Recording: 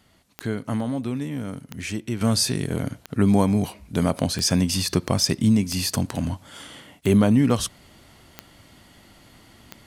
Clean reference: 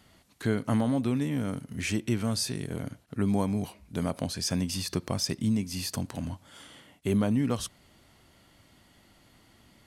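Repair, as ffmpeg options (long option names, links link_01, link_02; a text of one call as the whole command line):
ffmpeg -i in.wav -af "adeclick=threshold=4,asetnsamples=nb_out_samples=441:pad=0,asendcmd='2.21 volume volume -8.5dB',volume=0dB" out.wav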